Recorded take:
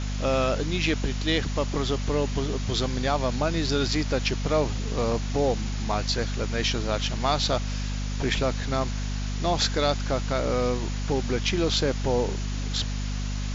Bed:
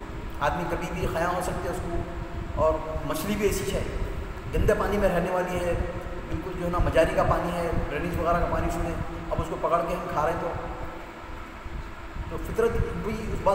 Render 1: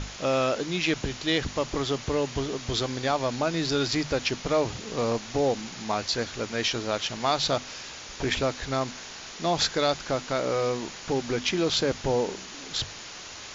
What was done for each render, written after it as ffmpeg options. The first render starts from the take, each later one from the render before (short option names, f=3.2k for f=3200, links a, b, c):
-af "bandreject=f=50:t=h:w=6,bandreject=f=100:t=h:w=6,bandreject=f=150:t=h:w=6,bandreject=f=200:t=h:w=6,bandreject=f=250:t=h:w=6"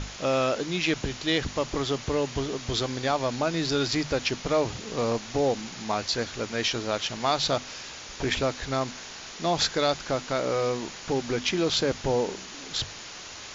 -af anull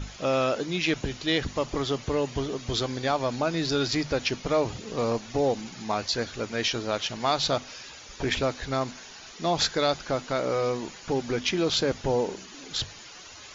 -af "afftdn=nr=10:nf=-42"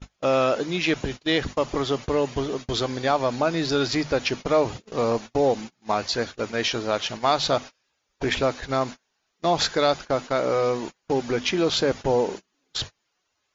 -af "equalizer=f=780:w=0.33:g=4.5,agate=range=-32dB:threshold=-32dB:ratio=16:detection=peak"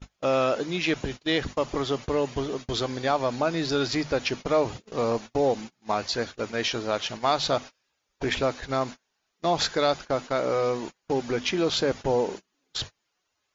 -af "volume=-2.5dB"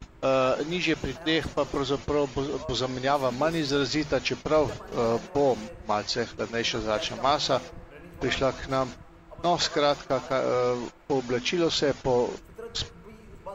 -filter_complex "[1:a]volume=-17dB[a];[0:a][a]amix=inputs=2:normalize=0"